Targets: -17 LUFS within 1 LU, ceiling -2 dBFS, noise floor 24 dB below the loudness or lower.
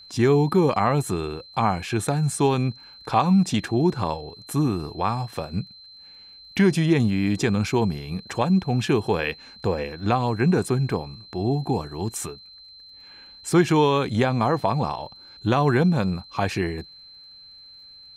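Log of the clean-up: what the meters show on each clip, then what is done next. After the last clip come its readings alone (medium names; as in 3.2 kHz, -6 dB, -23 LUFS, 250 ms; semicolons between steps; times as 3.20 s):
tick rate 31 per s; steady tone 4.1 kHz; tone level -44 dBFS; loudness -23.5 LUFS; peak level -7.0 dBFS; loudness target -17.0 LUFS
-> de-click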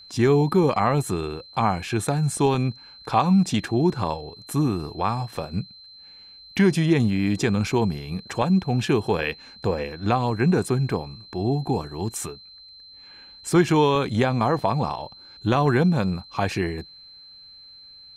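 tick rate 0.055 per s; steady tone 4.1 kHz; tone level -44 dBFS
-> band-stop 4.1 kHz, Q 30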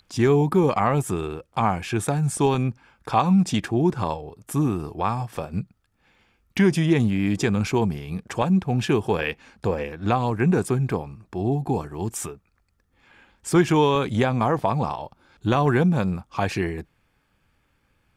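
steady tone not found; loudness -23.5 LUFS; peak level -7.0 dBFS; loudness target -17.0 LUFS
-> trim +6.5 dB; peak limiter -2 dBFS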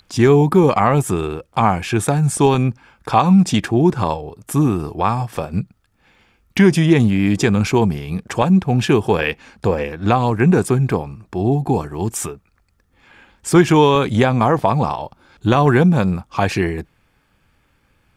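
loudness -17.0 LUFS; peak level -2.0 dBFS; noise floor -62 dBFS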